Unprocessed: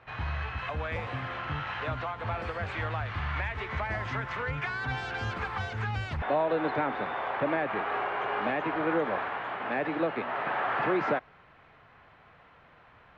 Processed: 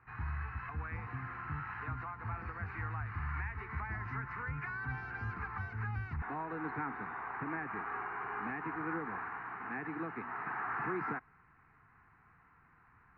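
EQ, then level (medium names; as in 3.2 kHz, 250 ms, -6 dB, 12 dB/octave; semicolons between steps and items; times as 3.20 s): low-pass 5.9 kHz; distance through air 210 m; static phaser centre 1.4 kHz, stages 4; -4.5 dB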